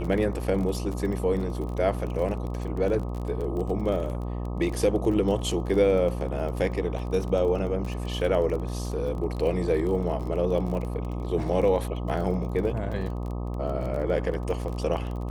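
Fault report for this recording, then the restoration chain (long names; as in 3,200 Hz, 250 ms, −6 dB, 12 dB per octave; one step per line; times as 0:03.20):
mains buzz 60 Hz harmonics 21 −31 dBFS
surface crackle 27 per second −32 dBFS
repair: click removal
hum removal 60 Hz, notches 21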